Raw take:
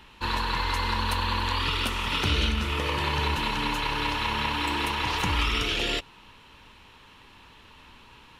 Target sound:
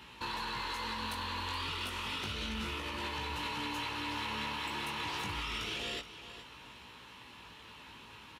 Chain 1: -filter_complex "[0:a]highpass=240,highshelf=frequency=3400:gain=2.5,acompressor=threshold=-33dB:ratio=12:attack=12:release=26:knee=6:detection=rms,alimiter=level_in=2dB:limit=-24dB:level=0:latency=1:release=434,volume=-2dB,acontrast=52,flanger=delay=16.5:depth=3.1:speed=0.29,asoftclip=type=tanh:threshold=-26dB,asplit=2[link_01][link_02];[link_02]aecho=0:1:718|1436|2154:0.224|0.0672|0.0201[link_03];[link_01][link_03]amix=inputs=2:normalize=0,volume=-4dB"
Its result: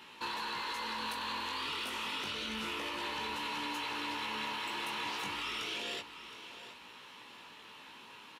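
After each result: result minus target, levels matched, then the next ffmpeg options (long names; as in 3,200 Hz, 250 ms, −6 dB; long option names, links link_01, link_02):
echo 296 ms late; 125 Hz band −11.5 dB; downward compressor: peak gain reduction +10 dB
-filter_complex "[0:a]highpass=240,highshelf=frequency=3400:gain=2.5,acompressor=threshold=-33dB:ratio=12:attack=12:release=26:knee=6:detection=rms,alimiter=level_in=2dB:limit=-24dB:level=0:latency=1:release=434,volume=-2dB,acontrast=52,flanger=delay=16.5:depth=3.1:speed=0.29,asoftclip=type=tanh:threshold=-26dB,asplit=2[link_01][link_02];[link_02]aecho=0:1:422|844|1266:0.224|0.0672|0.0201[link_03];[link_01][link_03]amix=inputs=2:normalize=0,volume=-4dB"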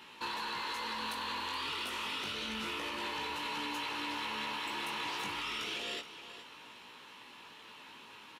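125 Hz band −11.5 dB; downward compressor: peak gain reduction +10 dB
-filter_complex "[0:a]highpass=77,highshelf=frequency=3400:gain=2.5,acompressor=threshold=-33dB:ratio=12:attack=12:release=26:knee=6:detection=rms,alimiter=level_in=2dB:limit=-24dB:level=0:latency=1:release=434,volume=-2dB,acontrast=52,flanger=delay=16.5:depth=3.1:speed=0.29,asoftclip=type=tanh:threshold=-26dB,asplit=2[link_01][link_02];[link_02]aecho=0:1:422|844|1266:0.224|0.0672|0.0201[link_03];[link_01][link_03]amix=inputs=2:normalize=0,volume=-4dB"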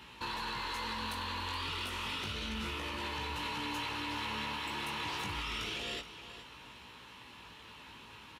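downward compressor: peak gain reduction +11 dB
-filter_complex "[0:a]highpass=77,highshelf=frequency=3400:gain=2.5,alimiter=level_in=2dB:limit=-24dB:level=0:latency=1:release=434,volume=-2dB,acontrast=52,flanger=delay=16.5:depth=3.1:speed=0.29,asoftclip=type=tanh:threshold=-26dB,asplit=2[link_01][link_02];[link_02]aecho=0:1:422|844|1266:0.224|0.0672|0.0201[link_03];[link_01][link_03]amix=inputs=2:normalize=0,volume=-4dB"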